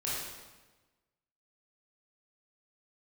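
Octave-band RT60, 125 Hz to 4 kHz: 1.5, 1.4, 1.2, 1.2, 1.1, 1.0 s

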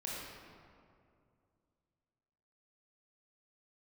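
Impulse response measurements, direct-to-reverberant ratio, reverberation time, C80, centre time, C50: -6.0 dB, 2.4 s, -0.5 dB, 0.128 s, -2.5 dB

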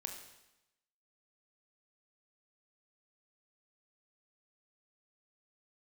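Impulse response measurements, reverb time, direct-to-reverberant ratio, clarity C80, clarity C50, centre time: 0.90 s, 3.0 dB, 8.0 dB, 6.0 dB, 30 ms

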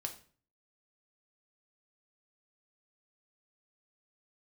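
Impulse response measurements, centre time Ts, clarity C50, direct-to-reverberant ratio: 11 ms, 11.5 dB, 4.0 dB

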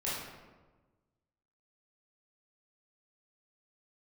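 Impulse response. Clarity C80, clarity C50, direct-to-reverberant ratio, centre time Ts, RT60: 2.5 dB, -1.0 dB, -9.0 dB, 82 ms, 1.3 s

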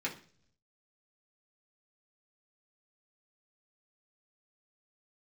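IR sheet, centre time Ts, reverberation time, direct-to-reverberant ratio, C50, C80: 15 ms, 0.50 s, -4.5 dB, 12.0 dB, 17.0 dB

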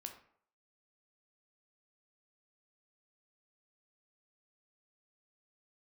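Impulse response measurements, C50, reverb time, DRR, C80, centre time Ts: 9.0 dB, 0.60 s, 4.0 dB, 12.5 dB, 15 ms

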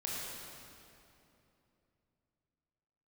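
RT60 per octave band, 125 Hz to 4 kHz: 3.8, 3.6, 3.1, 2.7, 2.4, 2.1 s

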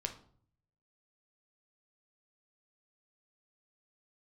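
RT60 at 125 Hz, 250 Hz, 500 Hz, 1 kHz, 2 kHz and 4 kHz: 1.0, 0.70, 0.55, 0.50, 0.40, 0.35 s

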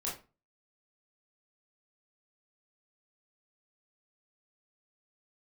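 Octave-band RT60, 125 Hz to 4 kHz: 0.45, 0.35, 0.30, 0.30, 0.30, 0.25 s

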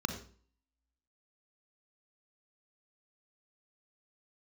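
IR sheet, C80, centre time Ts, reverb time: 10.5 dB, 18 ms, 0.45 s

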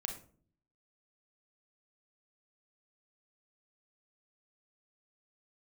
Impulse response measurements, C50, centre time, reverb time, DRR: 8.5 dB, 18 ms, 0.50 s, 3.5 dB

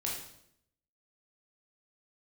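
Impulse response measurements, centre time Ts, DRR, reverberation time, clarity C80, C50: 46 ms, -3.5 dB, 0.70 s, 6.0 dB, 3.0 dB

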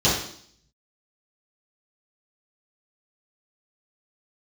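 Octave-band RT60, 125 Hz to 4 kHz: 0.65, 0.70, 0.60, 0.60, 0.55, 0.70 s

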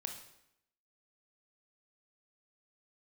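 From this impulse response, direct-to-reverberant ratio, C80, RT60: 3.5 dB, 10.0 dB, 0.80 s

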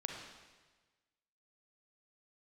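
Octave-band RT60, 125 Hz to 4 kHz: 1.5, 1.3, 1.4, 1.3, 1.3, 1.3 s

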